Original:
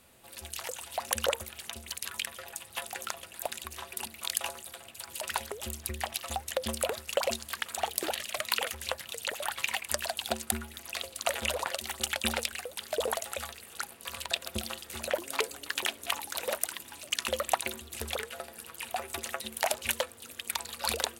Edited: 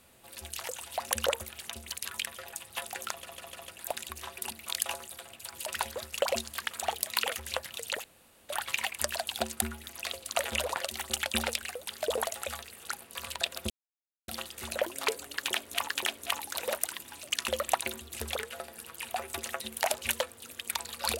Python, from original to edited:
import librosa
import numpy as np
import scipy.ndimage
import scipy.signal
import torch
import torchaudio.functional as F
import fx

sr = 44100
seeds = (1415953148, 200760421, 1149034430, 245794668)

y = fx.edit(x, sr, fx.stutter(start_s=3.12, slice_s=0.15, count=4),
    fx.cut(start_s=5.51, length_s=1.4),
    fx.cut(start_s=8.02, length_s=0.4),
    fx.insert_room_tone(at_s=9.39, length_s=0.45),
    fx.insert_silence(at_s=14.6, length_s=0.58),
    fx.repeat(start_s=15.69, length_s=0.52, count=2), tone=tone)